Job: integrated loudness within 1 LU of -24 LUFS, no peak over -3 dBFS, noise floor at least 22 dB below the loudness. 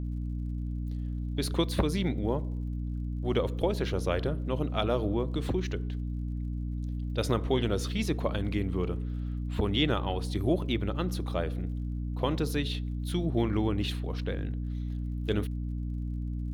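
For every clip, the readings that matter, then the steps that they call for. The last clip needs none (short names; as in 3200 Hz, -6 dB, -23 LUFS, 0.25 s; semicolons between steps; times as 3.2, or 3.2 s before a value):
ticks 43/s; hum 60 Hz; harmonics up to 300 Hz; hum level -31 dBFS; loudness -31.5 LUFS; peak -13.5 dBFS; loudness target -24.0 LUFS
-> de-click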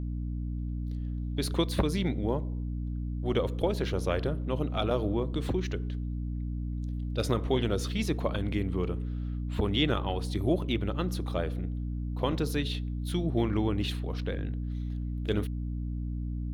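ticks 0.73/s; hum 60 Hz; harmonics up to 300 Hz; hum level -31 dBFS
-> de-hum 60 Hz, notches 5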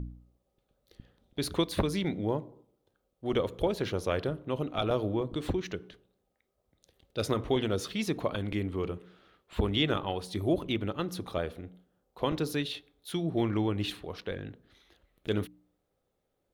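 hum none; loudness -32.5 LUFS; peak -14.5 dBFS; loudness target -24.0 LUFS
-> gain +8.5 dB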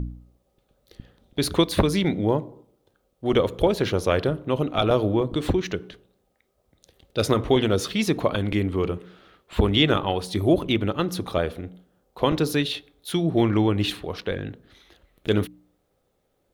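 loudness -24.0 LUFS; peak -6.0 dBFS; noise floor -71 dBFS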